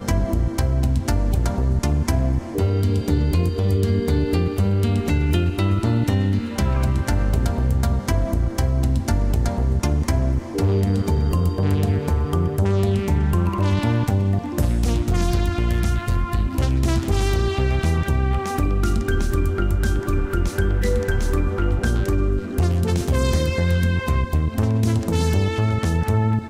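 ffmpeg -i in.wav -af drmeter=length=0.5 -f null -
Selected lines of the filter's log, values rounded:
Channel 1: DR: 8.1
Overall DR: 8.1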